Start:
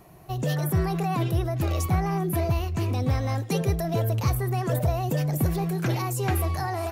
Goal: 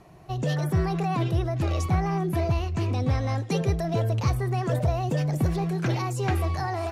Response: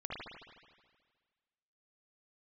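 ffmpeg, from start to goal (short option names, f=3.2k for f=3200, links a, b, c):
-af "lowpass=6.9k"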